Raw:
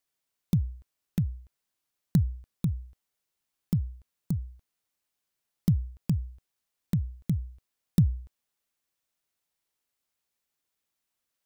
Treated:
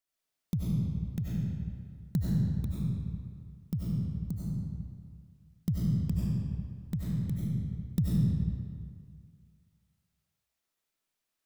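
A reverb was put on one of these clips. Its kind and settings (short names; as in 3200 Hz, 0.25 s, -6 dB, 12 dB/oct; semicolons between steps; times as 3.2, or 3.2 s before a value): digital reverb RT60 2 s, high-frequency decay 0.75×, pre-delay 55 ms, DRR -6.5 dB; gain -7 dB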